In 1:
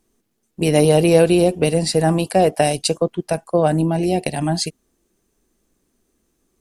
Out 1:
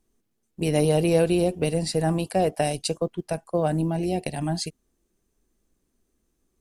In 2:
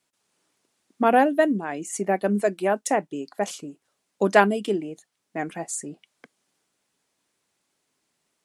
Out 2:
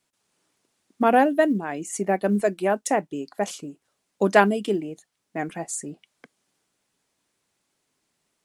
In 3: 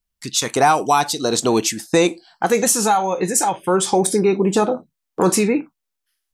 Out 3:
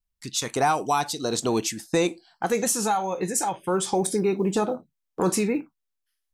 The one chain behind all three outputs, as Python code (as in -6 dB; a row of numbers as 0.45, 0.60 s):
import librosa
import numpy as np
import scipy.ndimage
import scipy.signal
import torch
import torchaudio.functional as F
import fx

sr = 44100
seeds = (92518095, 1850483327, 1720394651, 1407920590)

y = fx.low_shelf(x, sr, hz=100.0, db=7.5)
y = fx.quant_float(y, sr, bits=6)
y = y * 10.0 ** (-26 / 20.0) / np.sqrt(np.mean(np.square(y)))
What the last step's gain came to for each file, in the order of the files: -8.0, 0.0, -7.5 dB